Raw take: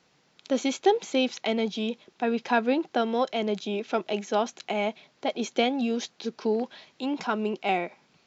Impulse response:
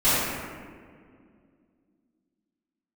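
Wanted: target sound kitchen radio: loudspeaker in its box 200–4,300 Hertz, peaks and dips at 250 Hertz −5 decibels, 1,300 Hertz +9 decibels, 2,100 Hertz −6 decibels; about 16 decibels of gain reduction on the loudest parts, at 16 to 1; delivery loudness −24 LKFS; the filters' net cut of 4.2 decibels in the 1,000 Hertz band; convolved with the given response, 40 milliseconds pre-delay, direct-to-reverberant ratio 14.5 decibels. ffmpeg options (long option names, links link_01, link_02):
-filter_complex "[0:a]equalizer=frequency=1000:width_type=o:gain=-8.5,acompressor=threshold=-33dB:ratio=16,asplit=2[link_01][link_02];[1:a]atrim=start_sample=2205,adelay=40[link_03];[link_02][link_03]afir=irnorm=-1:irlink=0,volume=-33dB[link_04];[link_01][link_04]amix=inputs=2:normalize=0,highpass=200,equalizer=frequency=250:width_type=q:width=4:gain=-5,equalizer=frequency=1300:width_type=q:width=4:gain=9,equalizer=frequency=2100:width_type=q:width=4:gain=-6,lowpass=frequency=4300:width=0.5412,lowpass=frequency=4300:width=1.3066,volume=16.5dB"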